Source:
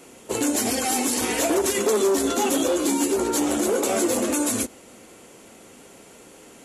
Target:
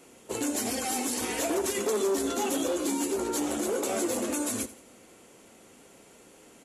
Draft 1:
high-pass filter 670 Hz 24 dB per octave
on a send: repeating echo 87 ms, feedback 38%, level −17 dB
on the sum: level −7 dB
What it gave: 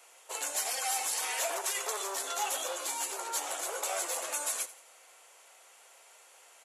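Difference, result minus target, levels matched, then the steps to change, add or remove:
500 Hz band −8.0 dB
remove: high-pass filter 670 Hz 24 dB per octave

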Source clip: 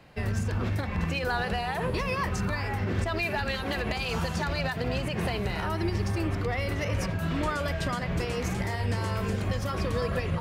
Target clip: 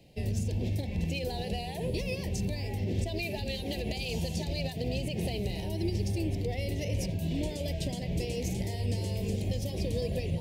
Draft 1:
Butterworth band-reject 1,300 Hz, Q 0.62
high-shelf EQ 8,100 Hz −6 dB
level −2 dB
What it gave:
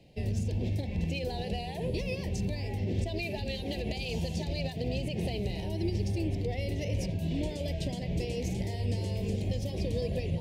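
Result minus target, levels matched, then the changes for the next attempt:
8,000 Hz band −4.5 dB
change: high-shelf EQ 8,100 Hz +4.5 dB

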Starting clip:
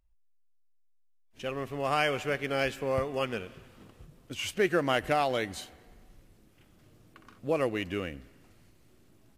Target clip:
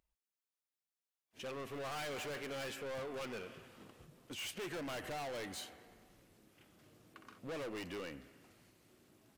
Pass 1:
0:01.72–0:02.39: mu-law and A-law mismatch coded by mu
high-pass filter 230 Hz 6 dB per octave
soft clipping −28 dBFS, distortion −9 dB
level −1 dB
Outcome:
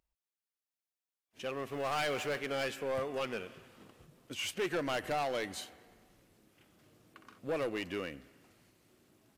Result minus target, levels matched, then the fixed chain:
soft clipping: distortion −6 dB
0:01.72–0:02.39: mu-law and A-law mismatch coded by mu
high-pass filter 230 Hz 6 dB per octave
soft clipping −39.5 dBFS, distortion −2 dB
level −1 dB

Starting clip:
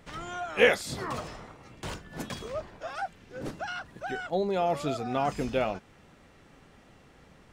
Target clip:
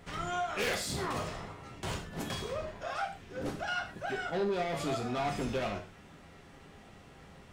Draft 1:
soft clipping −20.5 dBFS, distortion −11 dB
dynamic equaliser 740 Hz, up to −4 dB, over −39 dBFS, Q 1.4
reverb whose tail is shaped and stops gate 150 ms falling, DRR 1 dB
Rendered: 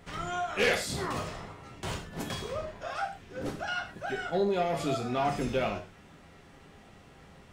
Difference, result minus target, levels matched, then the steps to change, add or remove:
soft clipping: distortion −6 dB
change: soft clipping −30 dBFS, distortion −5 dB

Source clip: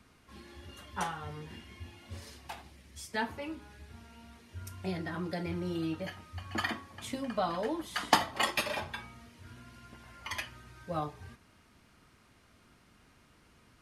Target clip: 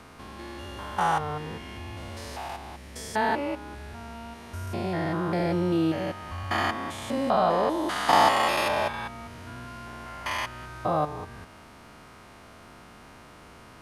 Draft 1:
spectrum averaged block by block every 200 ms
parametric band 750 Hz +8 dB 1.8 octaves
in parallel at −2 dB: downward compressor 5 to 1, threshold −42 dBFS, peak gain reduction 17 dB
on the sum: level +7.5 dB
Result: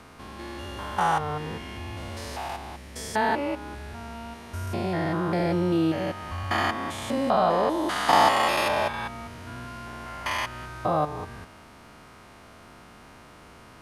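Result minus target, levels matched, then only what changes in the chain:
downward compressor: peak gain reduction −9 dB
change: downward compressor 5 to 1, threshold −53.5 dBFS, peak gain reduction 26 dB

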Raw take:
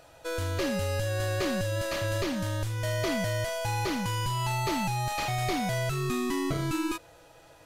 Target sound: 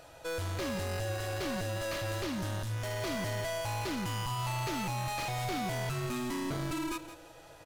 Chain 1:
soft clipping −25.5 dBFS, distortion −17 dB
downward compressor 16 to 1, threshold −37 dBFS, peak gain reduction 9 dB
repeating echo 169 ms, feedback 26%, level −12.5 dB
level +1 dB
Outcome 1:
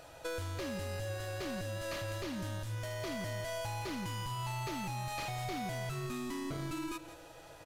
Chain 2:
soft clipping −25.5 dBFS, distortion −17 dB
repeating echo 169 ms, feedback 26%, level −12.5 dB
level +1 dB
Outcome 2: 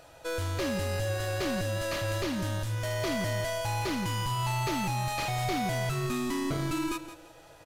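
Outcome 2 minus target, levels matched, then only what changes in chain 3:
soft clipping: distortion −7 dB
change: soft clipping −33 dBFS, distortion −9 dB

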